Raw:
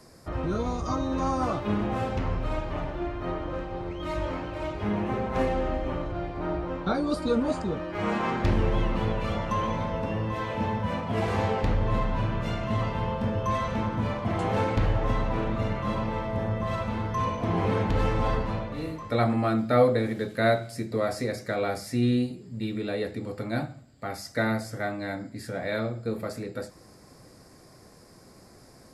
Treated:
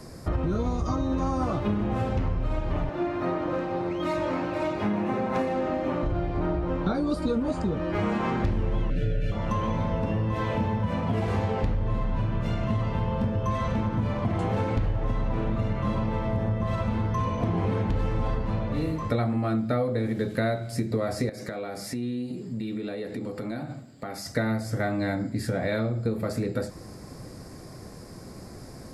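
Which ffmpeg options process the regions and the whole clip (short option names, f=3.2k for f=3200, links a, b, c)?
-filter_complex "[0:a]asettb=1/sr,asplit=3[a][b][c];[a]atrim=end=2.894[d];[b]atrim=start=2.89:end=6.03,asetpts=PTS-STARTPTS,afade=t=in:d=0.004:c=qsin,afade=t=out:st=3.136:d=0.004:c=qsin,highpass=210,equalizer=f=430:w=5.8:g=-6.5,bandreject=f=3.1k:w=17[e];[c]atrim=start=6.026[f];[d][e]acrossfade=d=0.004:c1=hsin:c2=qsin[g];[g][f]acrossfade=d=0.004:c1=qsin:c2=hsin,asettb=1/sr,asplit=3[h][i][j];[h]atrim=end=8.904[k];[i]atrim=start=8.9:end=9.32,asetpts=PTS-STARTPTS,afade=t=in:d=0.004:c=qsin,afade=t=out:st=0.416:d=0.004:c=qsin,asubboost=boost=9.5:cutoff=150,asuperstop=centerf=990:order=20:qfactor=1.5,aecho=1:1:6.9:0.89,atrim=end_sample=18522[l];[j]atrim=start=9.316[m];[k][l]acrossfade=d=0.004:c1=hsin:c2=qsin[n];[n][m]acrossfade=d=0.004:c1=qsin:c2=hsin,asettb=1/sr,asplit=3[o][p][q];[o]atrim=end=21.294[r];[p]atrim=start=21.29:end=24.26,asetpts=PTS-STARTPTS,afade=t=in:d=0.004:c=qsin,afade=t=out:st=2.966:d=0.004:c=qsin,highpass=170,acompressor=threshold=-39dB:ratio=6:attack=3.2:release=140:knee=1:detection=peak[s];[q]atrim=start=24.256[t];[r][s]acrossfade=d=0.004:c1=hsin:c2=qsin[u];[u][t]acrossfade=d=0.004:c1=qsin:c2=hsin,lowshelf=f=340:g=7.5,acompressor=threshold=-29dB:ratio=6,volume=5.5dB"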